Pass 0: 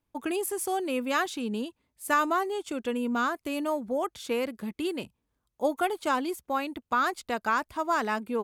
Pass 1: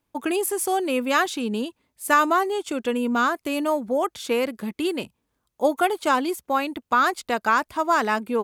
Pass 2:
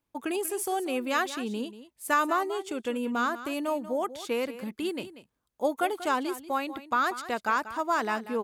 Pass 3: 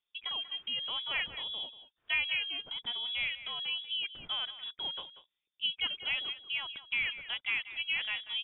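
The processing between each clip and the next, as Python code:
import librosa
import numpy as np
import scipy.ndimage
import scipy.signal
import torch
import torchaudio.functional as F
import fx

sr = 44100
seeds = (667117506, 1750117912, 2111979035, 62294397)

y1 = fx.low_shelf(x, sr, hz=110.0, db=-8.0)
y1 = y1 * 10.0 ** (6.5 / 20.0)
y2 = y1 + 10.0 ** (-14.0 / 20.0) * np.pad(y1, (int(188 * sr / 1000.0), 0))[:len(y1)]
y2 = y2 * 10.0 ** (-6.5 / 20.0)
y3 = fx.freq_invert(y2, sr, carrier_hz=3600)
y3 = y3 * 10.0 ** (-6.5 / 20.0)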